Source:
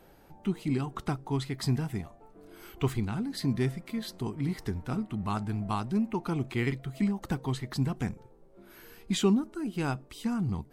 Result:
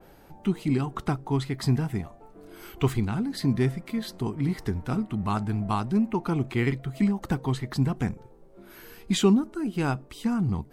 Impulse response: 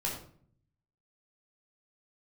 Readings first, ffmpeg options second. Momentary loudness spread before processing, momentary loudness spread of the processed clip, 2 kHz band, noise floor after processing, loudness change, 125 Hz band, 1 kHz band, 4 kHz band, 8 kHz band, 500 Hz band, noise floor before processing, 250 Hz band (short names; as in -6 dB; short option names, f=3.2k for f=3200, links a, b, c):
7 LU, 7 LU, +3.5 dB, -52 dBFS, +4.5 dB, +4.5 dB, +4.5 dB, +3.0 dB, +3.0 dB, +4.5 dB, -57 dBFS, +4.5 dB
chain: -af "adynamicequalizer=threshold=0.00282:dfrequency=2400:dqfactor=0.7:tfrequency=2400:tqfactor=0.7:attack=5:release=100:ratio=0.375:range=2:mode=cutabove:tftype=highshelf,volume=4.5dB"